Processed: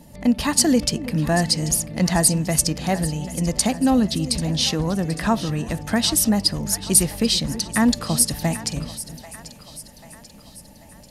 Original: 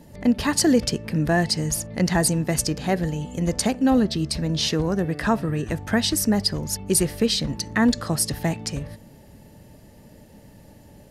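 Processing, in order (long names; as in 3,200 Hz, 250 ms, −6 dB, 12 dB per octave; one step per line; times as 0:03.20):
graphic EQ with 15 bands 100 Hz −7 dB, 400 Hz −8 dB, 1,600 Hz −5 dB, 10,000 Hz +4 dB
echo with a time of its own for lows and highs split 560 Hz, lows 326 ms, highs 789 ms, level −14.5 dB
level +3 dB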